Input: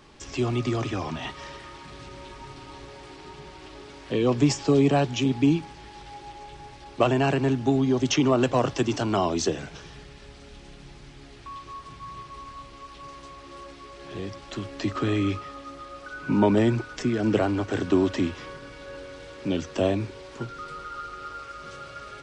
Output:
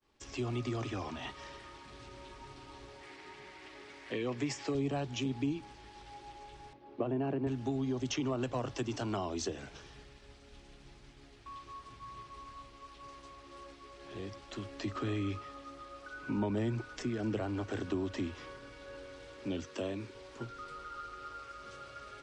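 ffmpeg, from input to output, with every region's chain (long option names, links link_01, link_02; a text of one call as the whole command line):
ffmpeg -i in.wav -filter_complex "[0:a]asettb=1/sr,asplit=3[link_01][link_02][link_03];[link_01]atrim=end=3.014[link_04];[link_02]atrim=start=3.01:end=4.75,asetpts=PTS-STARTPTS,afade=type=in:duration=0.004:curve=qsin,afade=type=out:start_time=1.736:duration=0.004:curve=qsin,highpass=frequency=180:poles=1,equalizer=frequency=2000:width=2.3:gain=9.5[link_05];[link_03]atrim=start=4.746[link_06];[link_04][link_05]acrossfade=duration=0.004:curve1=hsin:curve2=qsin[link_07];[link_07][link_06]acrossfade=duration=0.004:curve1=qsin:curve2=hsin,asettb=1/sr,asplit=3[link_08][link_09][link_10];[link_08]atrim=end=6.734[link_11];[link_09]atrim=start=6.73:end=7.47,asetpts=PTS-STARTPTS,afade=type=in:duration=0.004:curve=qsin,afade=type=out:start_time=0.736:duration=0.004:curve=qsin,highpass=230,lowpass=3600,tiltshelf=frequency=710:gain=9.5[link_12];[link_10]atrim=start=7.466[link_13];[link_11][link_12]acrossfade=duration=0.004:curve1=hsin:curve2=qsin[link_14];[link_14][link_13]acrossfade=duration=0.004:curve1=qsin:curve2=hsin,asettb=1/sr,asplit=3[link_15][link_16][link_17];[link_15]atrim=end=19.644[link_18];[link_16]atrim=start=19.64:end=20.15,asetpts=PTS-STARTPTS,afade=type=in:duration=0.004:curve=qsin,afade=type=out:start_time=0.506:duration=0.004:curve=qsin,highpass=frequency=210:poles=1,equalizer=frequency=730:width=4.2:gain=-8.5[link_19];[link_17]atrim=start=20.146[link_20];[link_18][link_19]acrossfade=duration=0.004:curve1=hsin:curve2=qsin[link_21];[link_21][link_20]acrossfade=duration=0.004:curve1=qsin:curve2=hsin,acrossover=split=170[link_22][link_23];[link_23]acompressor=threshold=-26dB:ratio=3[link_24];[link_22][link_24]amix=inputs=2:normalize=0,agate=range=-33dB:threshold=-43dB:ratio=3:detection=peak,equalizer=frequency=160:width_type=o:width=0.21:gain=-12,volume=-8dB" out.wav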